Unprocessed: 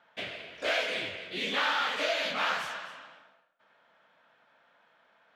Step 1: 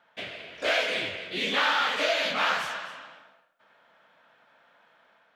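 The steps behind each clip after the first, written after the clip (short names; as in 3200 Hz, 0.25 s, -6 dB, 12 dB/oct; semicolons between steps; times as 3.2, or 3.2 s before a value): AGC gain up to 4 dB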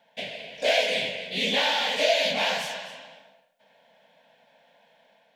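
fixed phaser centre 340 Hz, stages 6; gain +5.5 dB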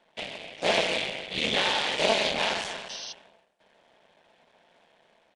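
cycle switcher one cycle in 3, muted; downsampling 22050 Hz; painted sound noise, 2.89–3.13, 2700–6300 Hz -39 dBFS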